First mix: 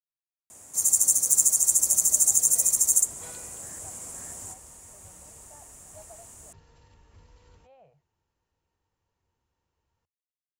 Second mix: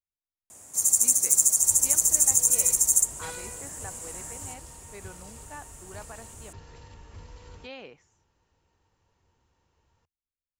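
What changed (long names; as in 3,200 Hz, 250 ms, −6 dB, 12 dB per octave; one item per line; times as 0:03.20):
speech: remove pair of resonant band-passes 310 Hz, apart 2.2 octaves
second sound +9.5 dB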